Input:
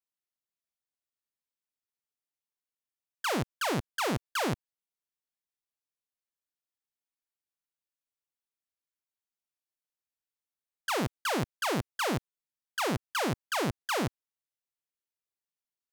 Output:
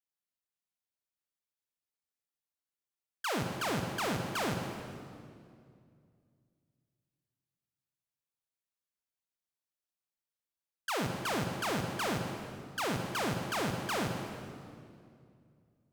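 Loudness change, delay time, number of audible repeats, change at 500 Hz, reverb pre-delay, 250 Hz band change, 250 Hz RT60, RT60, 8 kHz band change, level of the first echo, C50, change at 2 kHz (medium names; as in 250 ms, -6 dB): -3.0 dB, no echo, no echo, -2.5 dB, 37 ms, -2.0 dB, 2.9 s, 2.3 s, -2.5 dB, no echo, 4.0 dB, -2.5 dB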